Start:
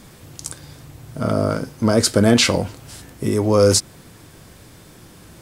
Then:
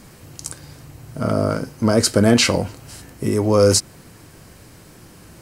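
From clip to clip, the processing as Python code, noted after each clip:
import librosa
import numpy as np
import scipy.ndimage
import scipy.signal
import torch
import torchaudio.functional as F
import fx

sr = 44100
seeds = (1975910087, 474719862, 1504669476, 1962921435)

y = fx.notch(x, sr, hz=3500.0, q=9.3)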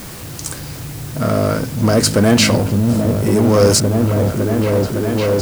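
y = fx.echo_opening(x, sr, ms=559, hz=200, octaves=1, feedback_pct=70, wet_db=0)
y = fx.power_curve(y, sr, exponent=0.7)
y = fx.quant_dither(y, sr, seeds[0], bits=6, dither='triangular')
y = y * librosa.db_to_amplitude(-1.0)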